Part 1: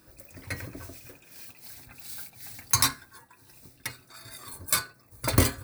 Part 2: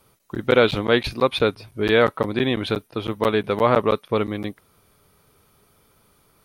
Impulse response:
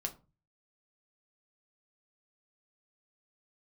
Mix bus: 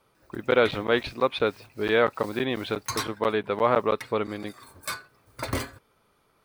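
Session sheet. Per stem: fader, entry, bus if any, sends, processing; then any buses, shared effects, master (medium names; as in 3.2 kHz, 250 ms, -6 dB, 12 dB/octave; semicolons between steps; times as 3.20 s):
0.0 dB, 0.15 s, no send, saturation -12 dBFS, distortion -16 dB
-2.0 dB, 0.00 s, no send, none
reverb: none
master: low-pass 2.5 kHz 6 dB/octave; bass shelf 290 Hz -9 dB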